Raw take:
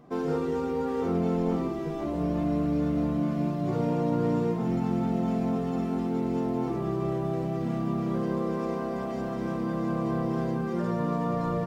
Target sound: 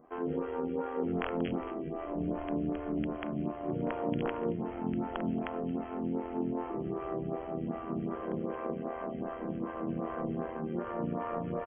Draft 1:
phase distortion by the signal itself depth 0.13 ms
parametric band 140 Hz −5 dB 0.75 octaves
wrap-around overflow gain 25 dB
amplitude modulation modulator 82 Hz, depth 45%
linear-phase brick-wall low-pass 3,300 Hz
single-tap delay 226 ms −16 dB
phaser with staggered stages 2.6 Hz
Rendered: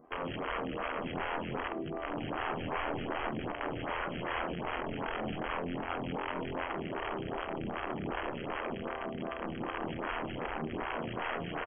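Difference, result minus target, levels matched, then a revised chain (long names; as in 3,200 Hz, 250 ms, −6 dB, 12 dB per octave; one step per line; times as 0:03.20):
wrap-around overflow: distortion +24 dB
phase distortion by the signal itself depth 0.13 ms
parametric band 140 Hz −5 dB 0.75 octaves
wrap-around overflow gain 18.5 dB
amplitude modulation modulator 82 Hz, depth 45%
linear-phase brick-wall low-pass 3,300 Hz
single-tap delay 226 ms −16 dB
phaser with staggered stages 2.6 Hz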